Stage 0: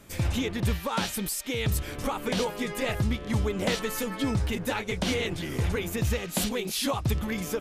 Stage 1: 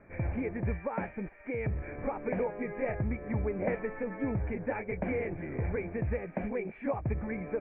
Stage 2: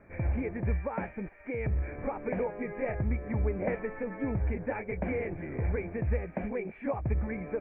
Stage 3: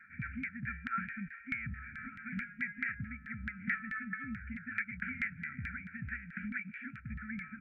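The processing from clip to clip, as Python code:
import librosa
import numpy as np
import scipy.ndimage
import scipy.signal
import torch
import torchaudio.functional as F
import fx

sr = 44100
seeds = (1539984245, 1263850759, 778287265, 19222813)

y1 = fx.dynamic_eq(x, sr, hz=1400.0, q=1.3, threshold_db=-46.0, ratio=4.0, max_db=-6)
y1 = scipy.signal.sosfilt(scipy.signal.cheby1(6, 6, 2400.0, 'lowpass', fs=sr, output='sos'), y1)
y2 = fx.peak_eq(y1, sr, hz=67.0, db=8.0, octaves=0.26)
y3 = fx.rider(y2, sr, range_db=4, speed_s=0.5)
y3 = fx.filter_lfo_bandpass(y3, sr, shape='saw_down', hz=4.6, low_hz=500.0, high_hz=1800.0, q=2.7)
y3 = fx.brickwall_bandstop(y3, sr, low_hz=260.0, high_hz=1300.0)
y3 = y3 * 10.0 ** (13.5 / 20.0)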